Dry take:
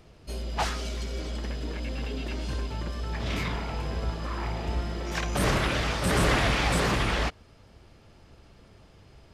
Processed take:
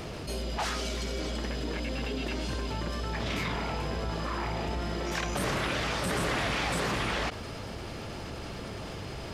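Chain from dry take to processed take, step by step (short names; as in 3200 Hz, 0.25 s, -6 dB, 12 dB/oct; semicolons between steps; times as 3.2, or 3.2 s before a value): low shelf 76 Hz -10.5 dB; fast leveller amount 70%; gain -6 dB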